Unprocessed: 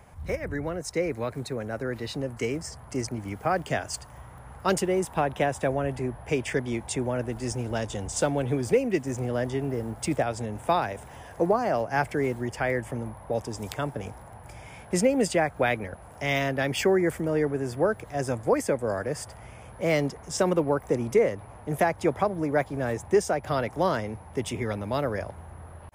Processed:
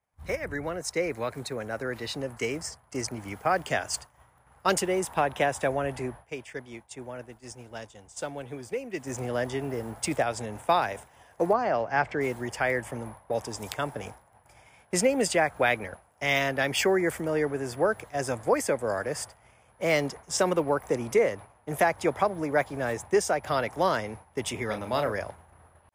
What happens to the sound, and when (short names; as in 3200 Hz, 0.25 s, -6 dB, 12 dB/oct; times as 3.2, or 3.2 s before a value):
6.07–9.15 dip -9 dB, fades 0.24 s
11.53–12.21 air absorption 140 m
24.66–25.12 doubler 33 ms -7 dB
whole clip: expander -35 dBFS; low shelf 440 Hz -9 dB; gain +3 dB